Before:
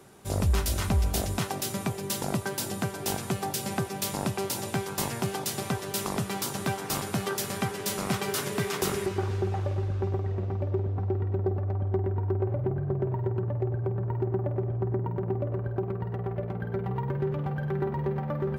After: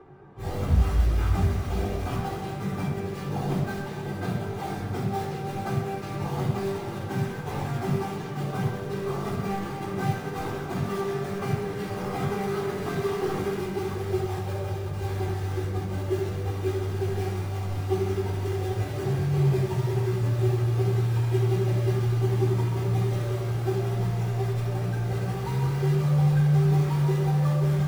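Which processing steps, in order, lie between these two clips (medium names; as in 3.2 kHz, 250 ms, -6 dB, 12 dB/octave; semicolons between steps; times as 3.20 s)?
low-pass 1.4 kHz 12 dB/octave; hum notches 50/100/150/200/250/300/350/400/450 Hz; in parallel at -7 dB: integer overflow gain 30.5 dB; on the sum: feedback comb 50 Hz, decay 0.29 s, harmonics all, mix 50%; plain phase-vocoder stretch 1.5×; thinning echo 127 ms, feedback 76%, level -11 dB; simulated room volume 2600 m³, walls furnished, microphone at 3.8 m; trim +2.5 dB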